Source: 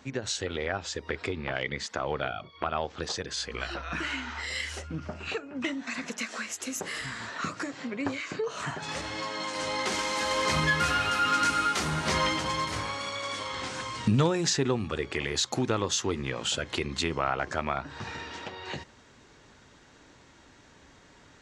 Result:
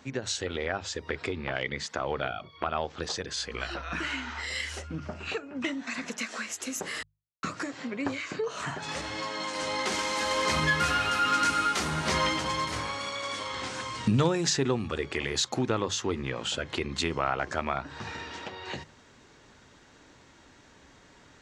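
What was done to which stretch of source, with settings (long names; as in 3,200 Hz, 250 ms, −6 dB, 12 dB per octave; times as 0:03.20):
0:07.03–0:07.43: silence
0:15.48–0:16.96: high-shelf EQ 5,300 Hz −7 dB
whole clip: mains-hum notches 50/100/150 Hz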